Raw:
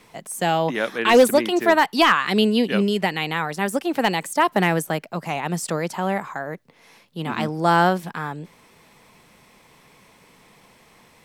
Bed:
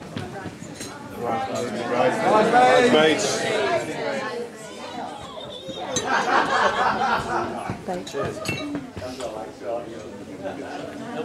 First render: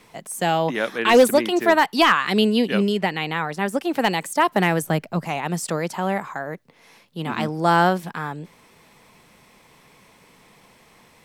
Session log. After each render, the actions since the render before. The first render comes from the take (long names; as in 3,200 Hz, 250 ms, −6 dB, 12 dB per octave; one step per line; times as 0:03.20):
0:02.92–0:03.79: high-shelf EQ 5,200 Hz −7 dB
0:04.82–0:05.26: low-shelf EQ 200 Hz +11 dB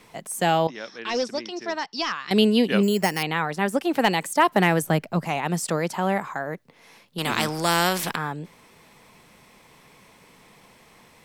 0:00.67–0:02.31: transistor ladder low-pass 5,600 Hz, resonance 85%
0:02.83–0:03.23: bad sample-rate conversion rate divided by 6×, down filtered, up hold
0:07.18–0:08.16: every bin compressed towards the loudest bin 2 to 1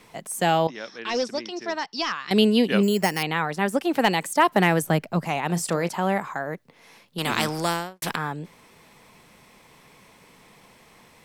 0:05.46–0:05.89: double-tracking delay 35 ms −13.5 dB
0:07.56–0:08.02: fade out and dull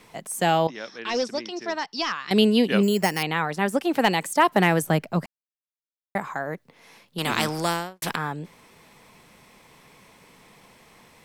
0:05.26–0:06.15: silence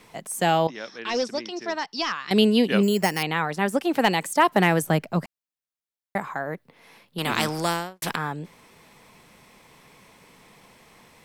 0:06.25–0:07.35: parametric band 6,500 Hz −6 dB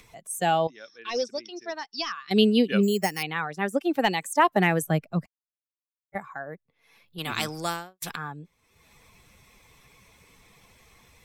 spectral dynamics exaggerated over time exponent 1.5
upward compression, threshold −42 dBFS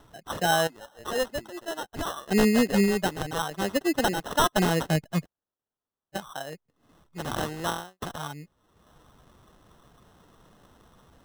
wavefolder on the positive side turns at −15 dBFS
decimation without filtering 19×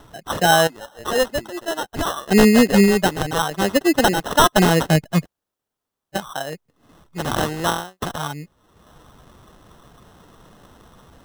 level +8.5 dB